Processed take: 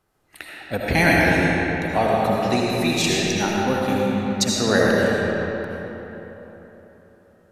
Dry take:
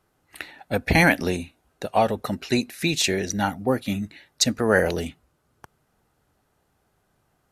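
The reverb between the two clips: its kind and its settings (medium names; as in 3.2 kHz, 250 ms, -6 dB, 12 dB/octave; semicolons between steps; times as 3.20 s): algorithmic reverb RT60 3.8 s, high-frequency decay 0.6×, pre-delay 40 ms, DRR -4.5 dB; trim -2 dB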